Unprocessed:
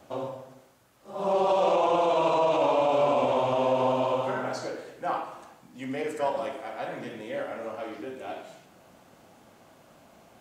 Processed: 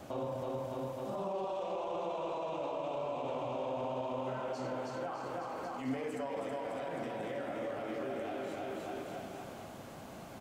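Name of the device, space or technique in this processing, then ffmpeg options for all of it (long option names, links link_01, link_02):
de-esser from a sidechain: -filter_complex "[0:a]lowshelf=frequency=350:gain=5,aecho=1:1:320|608|867.2|1100|1310:0.631|0.398|0.251|0.158|0.1,asplit=2[link_01][link_02];[link_02]highpass=frequency=4900:poles=1,apad=whole_len=516775[link_03];[link_01][link_03]sidechaincompress=threshold=-54dB:ratio=8:attack=1.3:release=61,volume=3dB"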